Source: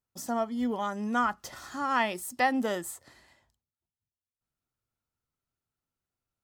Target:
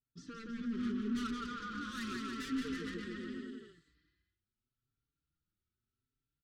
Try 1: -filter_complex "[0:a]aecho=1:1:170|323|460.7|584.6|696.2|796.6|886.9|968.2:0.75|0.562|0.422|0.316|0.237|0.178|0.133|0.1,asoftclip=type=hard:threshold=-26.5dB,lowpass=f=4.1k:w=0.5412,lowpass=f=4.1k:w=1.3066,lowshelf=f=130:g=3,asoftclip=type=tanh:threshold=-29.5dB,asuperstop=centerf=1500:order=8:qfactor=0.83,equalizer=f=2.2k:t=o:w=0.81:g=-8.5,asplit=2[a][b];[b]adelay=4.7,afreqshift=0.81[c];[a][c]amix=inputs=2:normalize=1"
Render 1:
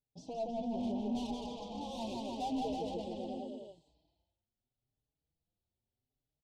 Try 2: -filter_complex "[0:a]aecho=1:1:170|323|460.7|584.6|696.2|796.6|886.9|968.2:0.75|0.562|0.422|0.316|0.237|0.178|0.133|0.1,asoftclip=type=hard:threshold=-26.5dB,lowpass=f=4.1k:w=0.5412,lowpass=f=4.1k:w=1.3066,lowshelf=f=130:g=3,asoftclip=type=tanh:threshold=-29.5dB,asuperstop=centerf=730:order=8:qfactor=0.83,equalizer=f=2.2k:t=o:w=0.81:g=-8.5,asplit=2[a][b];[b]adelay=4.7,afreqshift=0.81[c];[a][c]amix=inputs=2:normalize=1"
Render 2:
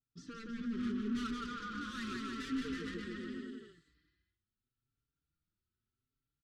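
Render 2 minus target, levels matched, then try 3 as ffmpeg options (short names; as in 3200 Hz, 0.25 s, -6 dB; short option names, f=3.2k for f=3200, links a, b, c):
hard clip: distortion +16 dB
-filter_complex "[0:a]aecho=1:1:170|323|460.7|584.6|696.2|796.6|886.9|968.2:0.75|0.562|0.422|0.316|0.237|0.178|0.133|0.1,asoftclip=type=hard:threshold=-17.5dB,lowpass=f=4.1k:w=0.5412,lowpass=f=4.1k:w=1.3066,lowshelf=f=130:g=3,asoftclip=type=tanh:threshold=-29.5dB,asuperstop=centerf=730:order=8:qfactor=0.83,equalizer=f=2.2k:t=o:w=0.81:g=-8.5,asplit=2[a][b];[b]adelay=4.7,afreqshift=0.81[c];[a][c]amix=inputs=2:normalize=1"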